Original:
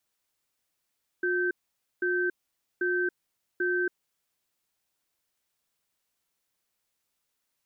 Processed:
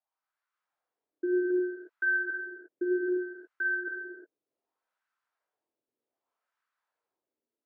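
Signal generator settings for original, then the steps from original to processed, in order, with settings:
cadence 359 Hz, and 1.55 kHz, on 0.28 s, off 0.51 s, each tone -27 dBFS 2.66 s
level rider gain up to 4.5 dB; wah-wah 0.65 Hz 320–1500 Hz, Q 3.8; gated-style reverb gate 390 ms flat, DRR -2.5 dB

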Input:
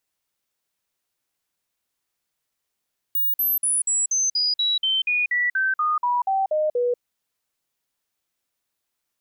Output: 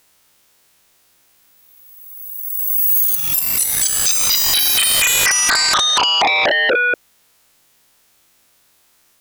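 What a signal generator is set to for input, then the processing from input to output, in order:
stepped sine 15.6 kHz down, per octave 3, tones 16, 0.19 s, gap 0.05 s -18.5 dBFS
reverse spectral sustain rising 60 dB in 1.83 s; in parallel at -2 dB: sine folder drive 17 dB, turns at -10 dBFS

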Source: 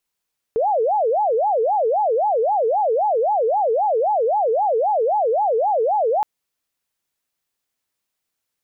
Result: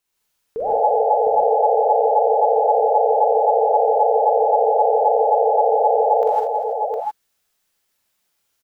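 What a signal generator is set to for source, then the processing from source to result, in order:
siren wail 436–857 Hz 3.8 per s sine -15.5 dBFS 5.67 s
peak limiter -21.5 dBFS; on a send: multi-tap echo 45/61/239/328/710 ms -4.5/-7.5/-12/-14.5/-3.5 dB; on the sum: gated-style reverb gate 180 ms rising, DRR -4 dB

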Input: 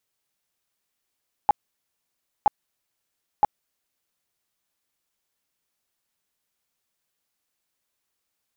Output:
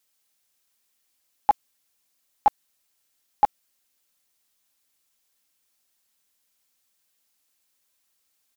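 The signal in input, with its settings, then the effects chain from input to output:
tone bursts 835 Hz, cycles 15, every 0.97 s, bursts 3, -12 dBFS
treble shelf 2.5 kHz +8 dB; comb 3.8 ms, depth 36%

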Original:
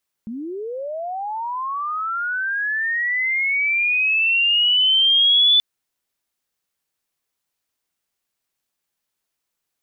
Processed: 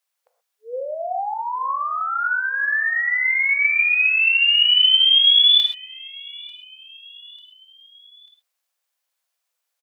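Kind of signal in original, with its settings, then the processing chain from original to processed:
sweep linear 210 Hz -> 3.5 kHz -27 dBFS -> -11 dBFS 5.33 s
brick-wall FIR high-pass 470 Hz; feedback delay 893 ms, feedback 52%, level -23.5 dB; gated-style reverb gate 150 ms flat, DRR 4.5 dB

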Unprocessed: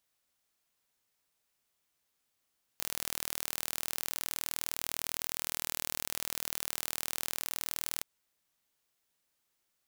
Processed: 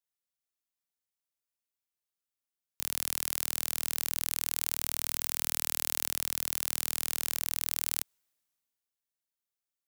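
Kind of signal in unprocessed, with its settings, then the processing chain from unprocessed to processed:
pulse train 39.7 per s, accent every 0, -7.5 dBFS 5.22 s
treble shelf 5.4 kHz +5.5 dB; three bands expanded up and down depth 40%

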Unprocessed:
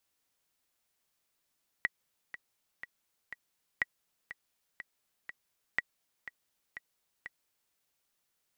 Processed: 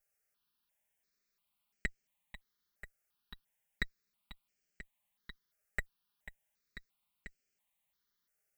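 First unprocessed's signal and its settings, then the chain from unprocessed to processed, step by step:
metronome 122 bpm, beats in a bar 4, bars 3, 1.93 kHz, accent 14 dB -15 dBFS
comb filter that takes the minimum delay 4.9 ms; stepped phaser 2.9 Hz 990–3700 Hz

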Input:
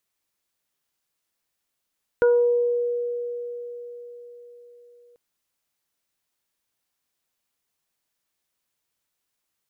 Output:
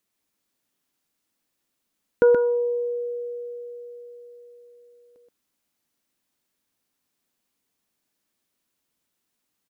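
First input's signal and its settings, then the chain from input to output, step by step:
additive tone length 2.94 s, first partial 481 Hz, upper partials -16.5/-9.5 dB, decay 4.60 s, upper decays 0.88/0.32 s, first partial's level -13.5 dB
peaking EQ 250 Hz +9.5 dB 1.2 oct; on a send: delay 126 ms -5 dB

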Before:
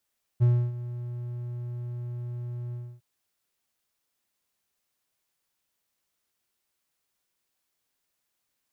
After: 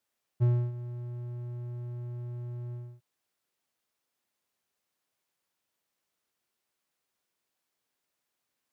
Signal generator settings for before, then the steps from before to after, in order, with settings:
ADSR triangle 121 Hz, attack 26 ms, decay 292 ms, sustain -16 dB, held 2.33 s, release 277 ms -14 dBFS
high-pass 270 Hz 6 dB/octave; tilt EQ -1.5 dB/octave

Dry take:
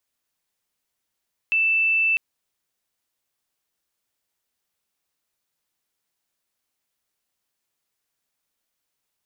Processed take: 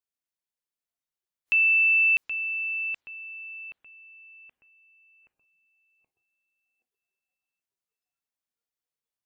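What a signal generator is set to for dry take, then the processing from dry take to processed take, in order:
tone sine 2.65 kHz -17 dBFS 0.65 s
on a send: filtered feedback delay 775 ms, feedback 53%, low-pass 1.9 kHz, level -5 dB; on the sum: spectral noise reduction 15 dB

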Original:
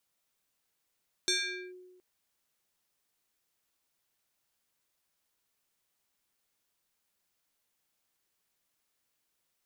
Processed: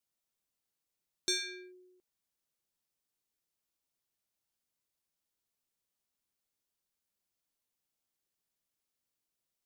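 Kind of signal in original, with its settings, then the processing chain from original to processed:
FM tone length 0.72 s, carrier 365 Hz, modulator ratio 5.42, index 3.4, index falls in 0.45 s linear, decay 1.25 s, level -24 dB
FFT filter 250 Hz 0 dB, 1.7 kHz -6 dB, 4.9 kHz -2 dB; in parallel at -9 dB: saturation -35.5 dBFS; on the sum: upward expansion 1.5:1, over -46 dBFS

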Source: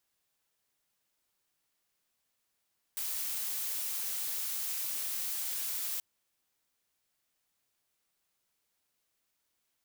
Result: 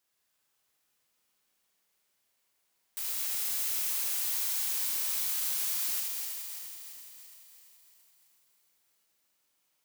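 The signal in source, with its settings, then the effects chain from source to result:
noise blue, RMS -35.5 dBFS 3.03 s
backward echo that repeats 169 ms, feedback 75%, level -6.5 dB; bass shelf 120 Hz -6.5 dB; Schroeder reverb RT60 2.2 s, combs from 30 ms, DRR 1.5 dB

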